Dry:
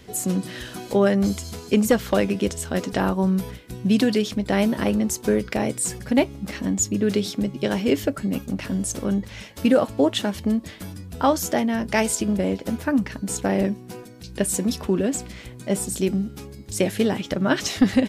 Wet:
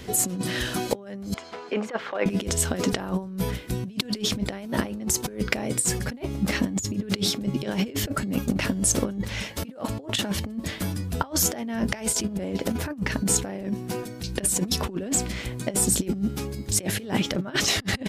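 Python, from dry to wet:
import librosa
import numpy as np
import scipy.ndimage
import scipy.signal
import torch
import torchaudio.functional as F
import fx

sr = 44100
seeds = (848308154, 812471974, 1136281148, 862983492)

y = fx.bandpass_edges(x, sr, low_hz=590.0, high_hz=2000.0, at=(1.34, 2.26))
y = fx.over_compress(y, sr, threshold_db=-27.0, ratio=-0.5)
y = y * 10.0 ** (1.5 / 20.0)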